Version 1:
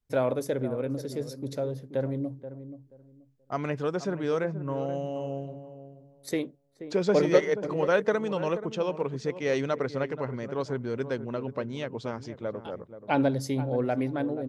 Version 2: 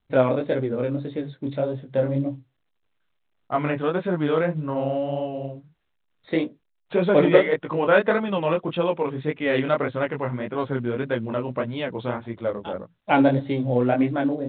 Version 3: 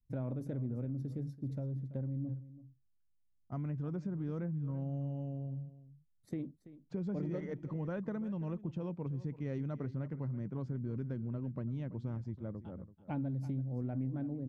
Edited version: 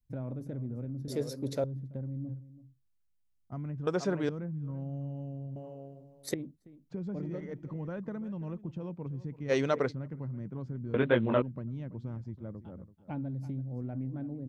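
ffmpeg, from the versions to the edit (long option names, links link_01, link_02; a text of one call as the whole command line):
ffmpeg -i take0.wav -i take1.wav -i take2.wav -filter_complex "[0:a]asplit=4[link_01][link_02][link_03][link_04];[2:a]asplit=6[link_05][link_06][link_07][link_08][link_09][link_10];[link_05]atrim=end=1.082[link_11];[link_01]atrim=start=1.078:end=1.642[link_12];[link_06]atrim=start=1.638:end=3.872[link_13];[link_02]atrim=start=3.868:end=4.292[link_14];[link_07]atrim=start=4.288:end=5.562[link_15];[link_03]atrim=start=5.558:end=6.342[link_16];[link_08]atrim=start=6.338:end=9.52[link_17];[link_04]atrim=start=9.48:end=9.93[link_18];[link_09]atrim=start=9.89:end=10.942[link_19];[1:a]atrim=start=10.938:end=11.422[link_20];[link_10]atrim=start=11.418[link_21];[link_11][link_12]acrossfade=duration=0.004:curve1=hsin:curve2=hsin[link_22];[link_22][link_13]acrossfade=duration=0.004:curve1=hsin:curve2=hsin[link_23];[link_23][link_14]acrossfade=duration=0.004:curve1=hsin:curve2=hsin[link_24];[link_24][link_15]acrossfade=duration=0.004:curve1=hsin:curve2=hsin[link_25];[link_25][link_16]acrossfade=duration=0.004:curve1=hsin:curve2=hsin[link_26];[link_26][link_17]acrossfade=duration=0.004:curve1=hsin:curve2=hsin[link_27];[link_27][link_18]acrossfade=duration=0.04:curve1=tri:curve2=tri[link_28];[link_28][link_19]acrossfade=duration=0.04:curve1=tri:curve2=tri[link_29];[link_29][link_20]acrossfade=duration=0.004:curve1=hsin:curve2=hsin[link_30];[link_30][link_21]acrossfade=duration=0.004:curve1=hsin:curve2=hsin" out.wav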